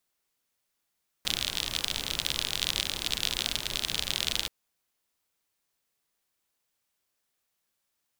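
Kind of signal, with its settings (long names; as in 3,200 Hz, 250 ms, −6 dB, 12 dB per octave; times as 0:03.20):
rain-like ticks over hiss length 3.23 s, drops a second 49, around 3,500 Hz, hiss −8 dB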